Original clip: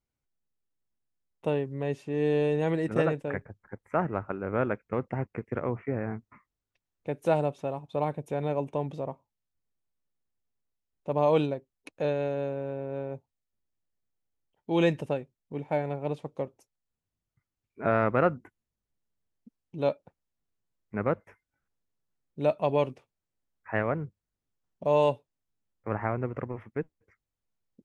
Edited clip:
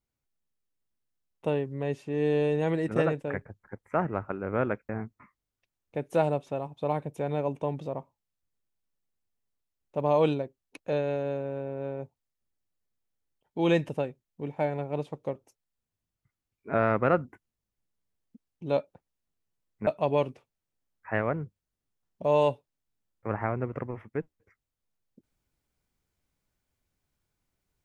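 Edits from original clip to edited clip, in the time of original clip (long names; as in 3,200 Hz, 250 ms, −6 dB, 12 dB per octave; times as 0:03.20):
0:04.89–0:06.01: remove
0:20.99–0:22.48: remove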